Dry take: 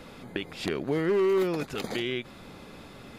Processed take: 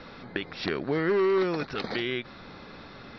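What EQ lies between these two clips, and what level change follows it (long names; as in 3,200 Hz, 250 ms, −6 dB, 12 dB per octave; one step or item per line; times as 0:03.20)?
Chebyshev low-pass with heavy ripple 5,700 Hz, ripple 6 dB
+5.5 dB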